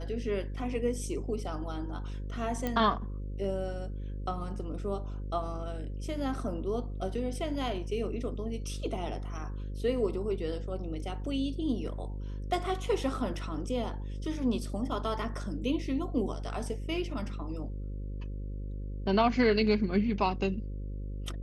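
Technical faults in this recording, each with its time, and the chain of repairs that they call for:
buzz 50 Hz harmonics 11 -37 dBFS
2.67 pop -18 dBFS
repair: de-click; de-hum 50 Hz, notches 11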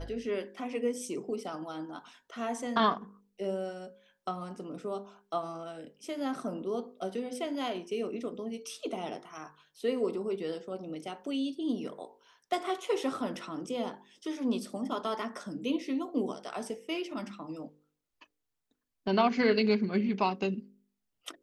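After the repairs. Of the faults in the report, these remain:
none

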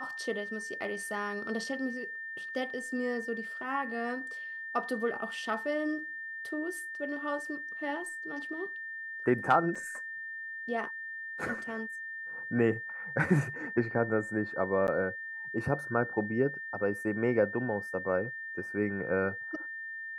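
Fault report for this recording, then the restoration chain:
tone 1800 Hz -38 dBFS
9.75 gap 4.6 ms
14.87–14.88 gap 9.9 ms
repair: notch 1800 Hz, Q 30; interpolate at 9.75, 4.6 ms; interpolate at 14.87, 9.9 ms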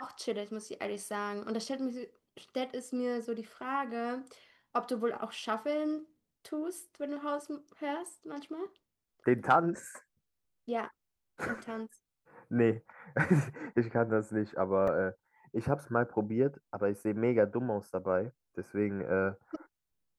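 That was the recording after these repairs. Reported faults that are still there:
none

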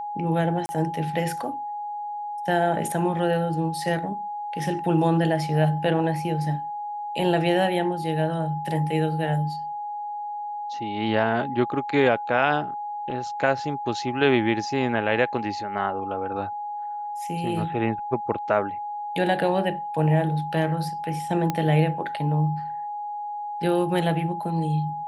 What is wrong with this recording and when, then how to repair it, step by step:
tone 830 Hz -29 dBFS
0.66–0.69 gap 30 ms
21.5 pop -11 dBFS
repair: de-click; notch 830 Hz, Q 30; interpolate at 0.66, 30 ms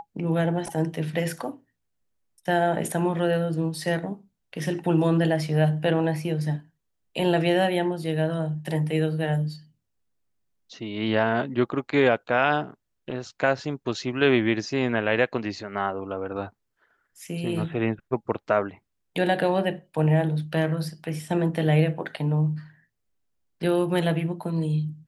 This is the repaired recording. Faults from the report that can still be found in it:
none

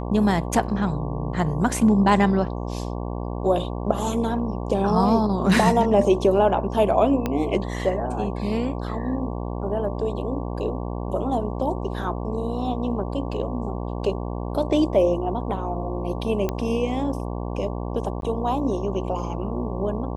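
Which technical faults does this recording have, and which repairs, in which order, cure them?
buzz 60 Hz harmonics 19 -29 dBFS
7.26 pop -11 dBFS
16.49 pop -12 dBFS
18.21–18.22 gap 12 ms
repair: de-click; de-hum 60 Hz, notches 19; interpolate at 18.21, 12 ms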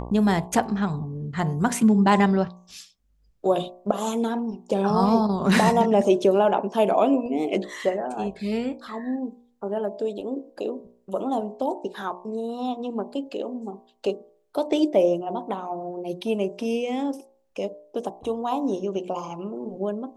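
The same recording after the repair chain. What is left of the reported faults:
7.26 pop

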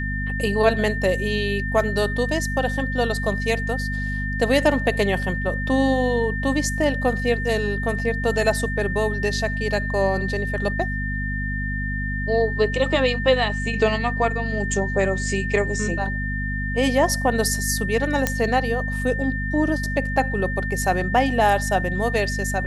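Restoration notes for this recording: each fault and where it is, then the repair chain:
hum 50 Hz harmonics 5 -27 dBFS
tone 1800 Hz -28 dBFS
18.27 pop -5 dBFS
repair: de-click; notch 1800 Hz, Q 30; de-hum 50 Hz, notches 5

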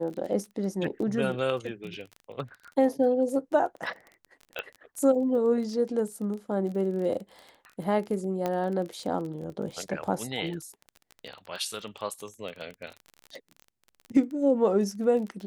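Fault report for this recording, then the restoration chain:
crackle 22/s -35 dBFS
4.59 pop -19 dBFS
8.46 pop -16 dBFS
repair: de-click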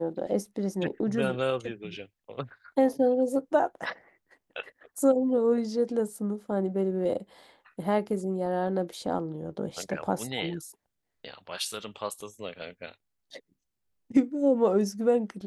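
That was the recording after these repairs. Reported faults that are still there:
none

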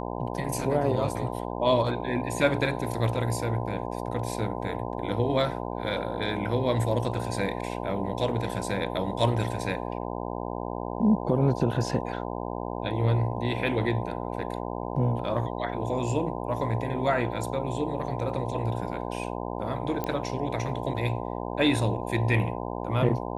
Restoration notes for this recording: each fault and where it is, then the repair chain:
buzz 60 Hz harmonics 17 -33 dBFS
20.04 pop -16 dBFS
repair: de-click; de-hum 60 Hz, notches 17

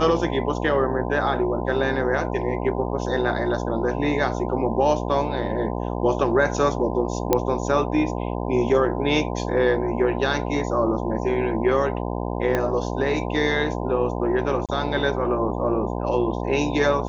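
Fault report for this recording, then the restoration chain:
buzz 60 Hz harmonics 17 -27 dBFS
7.33 pop -4 dBFS
12.55 pop -10 dBFS
14.66–14.69 gap 27 ms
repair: de-click; de-hum 60 Hz, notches 17; interpolate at 14.66, 27 ms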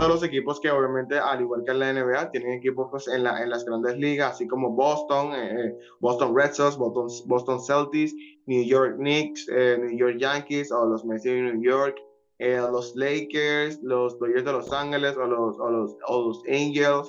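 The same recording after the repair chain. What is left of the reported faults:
12.55 pop

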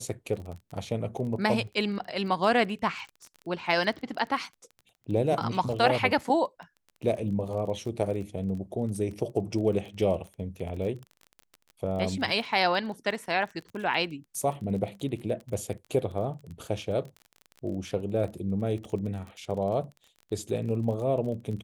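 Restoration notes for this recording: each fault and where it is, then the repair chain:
crackle 24/s -36 dBFS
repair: de-click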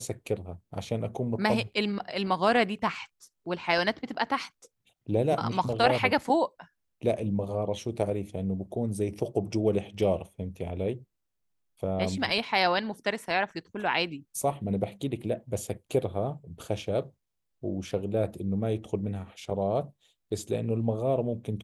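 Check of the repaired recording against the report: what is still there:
none

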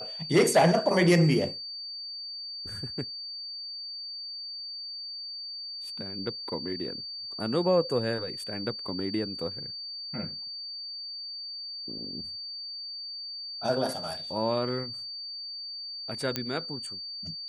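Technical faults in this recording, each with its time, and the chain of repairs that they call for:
tone 4600 Hz -36 dBFS
16.36 pop -12 dBFS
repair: de-click; notch 4600 Hz, Q 30

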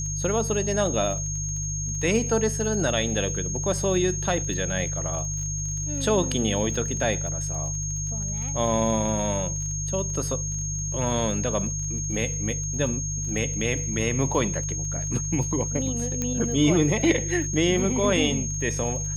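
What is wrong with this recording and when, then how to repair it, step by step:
crackle 33/s -34 dBFS
hum 50 Hz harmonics 3 -31 dBFS
tone 6500 Hz -30 dBFS
16.22 pop -13 dBFS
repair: de-click; de-hum 50 Hz, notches 3; notch 6500 Hz, Q 30

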